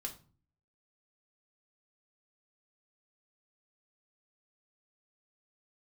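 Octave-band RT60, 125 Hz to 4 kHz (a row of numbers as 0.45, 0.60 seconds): 0.70, 0.60, 0.40, 0.40, 0.30, 0.30 seconds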